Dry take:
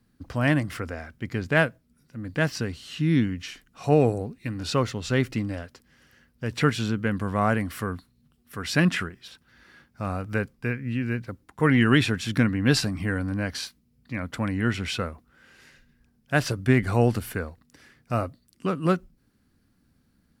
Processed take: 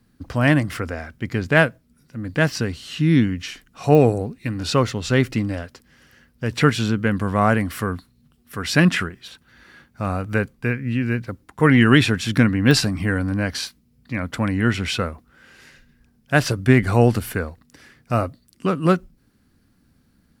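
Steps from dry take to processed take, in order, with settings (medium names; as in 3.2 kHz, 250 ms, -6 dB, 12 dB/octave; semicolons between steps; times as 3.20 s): 9.04–10.74 s: band-stop 5.2 kHz, Q 11; clicks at 3.95/12.71 s, -17 dBFS; trim +5.5 dB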